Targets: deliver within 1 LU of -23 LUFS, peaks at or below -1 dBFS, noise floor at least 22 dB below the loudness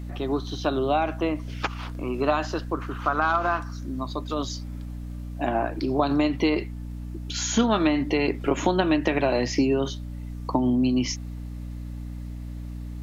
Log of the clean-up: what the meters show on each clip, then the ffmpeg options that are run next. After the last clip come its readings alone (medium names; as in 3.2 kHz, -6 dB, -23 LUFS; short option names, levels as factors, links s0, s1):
hum 60 Hz; highest harmonic 300 Hz; hum level -32 dBFS; loudness -25.5 LUFS; peak level -6.5 dBFS; loudness target -23.0 LUFS
-> -af "bandreject=f=60:t=h:w=6,bandreject=f=120:t=h:w=6,bandreject=f=180:t=h:w=6,bandreject=f=240:t=h:w=6,bandreject=f=300:t=h:w=6"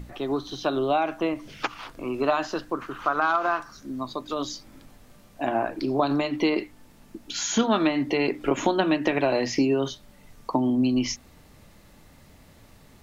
hum not found; loudness -26.0 LUFS; peak level -7.5 dBFS; loudness target -23.0 LUFS
-> -af "volume=1.41"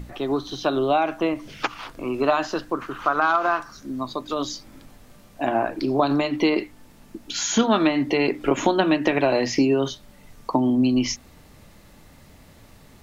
loudness -23.0 LUFS; peak level -4.5 dBFS; noise floor -51 dBFS